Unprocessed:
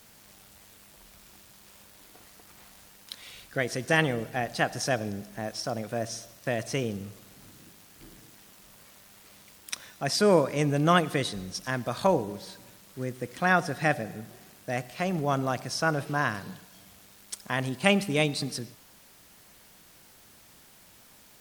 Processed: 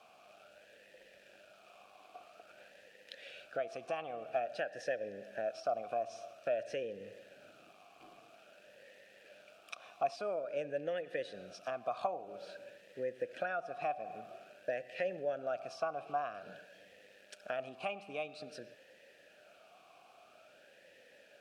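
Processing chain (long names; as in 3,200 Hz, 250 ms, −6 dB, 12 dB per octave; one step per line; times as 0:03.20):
downward compressor 10 to 1, threshold −34 dBFS, peak gain reduction 18.5 dB
formant filter swept between two vowels a-e 0.5 Hz
level +10.5 dB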